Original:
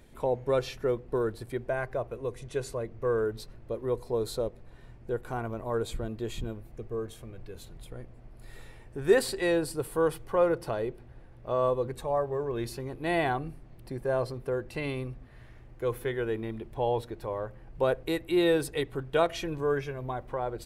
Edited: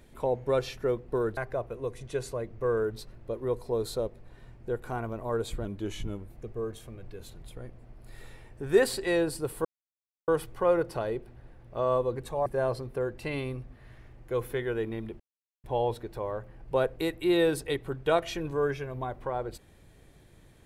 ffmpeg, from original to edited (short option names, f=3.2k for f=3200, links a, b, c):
-filter_complex "[0:a]asplit=7[a][b][c][d][e][f][g];[a]atrim=end=1.372[h];[b]atrim=start=1.778:end=6.064[i];[c]atrim=start=6.06:end=6.65,asetpts=PTS-STARTPTS,asetrate=40131,aresample=44100,atrim=end_sample=28592,asetpts=PTS-STARTPTS[j];[d]atrim=start=6.646:end=10,asetpts=PTS-STARTPTS,afade=t=out:st=3.35:d=0.004:c=hsin,apad=pad_dur=0.63[k];[e]atrim=start=10:end=12.182,asetpts=PTS-STARTPTS,afade=t=in:d=0.004:c=hsin[l];[f]atrim=start=13.968:end=16.71,asetpts=PTS-STARTPTS,afade=t=out:st=2.738:d=0.004:c=hsin,apad=pad_dur=0.44[m];[g]atrim=start=16.71,asetpts=PTS-STARTPTS,afade=t=in:d=0.004:c=hsin[n];[h][i]acrossfade=d=0.004:c1=hsin:c2=hsin[o];[o][j]acrossfade=d=0.004:c1=hsin:c2=hsin[p];[k][l]concat=n=2:v=0:a=1[q];[p][q]acrossfade=d=0.004:c1=hsin:c2=hsin[r];[m][n]concat=n=2:v=0:a=1[s];[r][s]acrossfade=d=0.004:c1=hsin:c2=hsin"